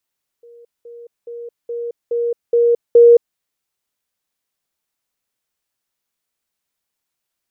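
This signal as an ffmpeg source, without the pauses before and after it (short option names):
-f lavfi -i "aevalsrc='pow(10,(-40+6*floor(t/0.42))/20)*sin(2*PI*472*t)*clip(min(mod(t,0.42),0.22-mod(t,0.42))/0.005,0,1)':d=2.94:s=44100"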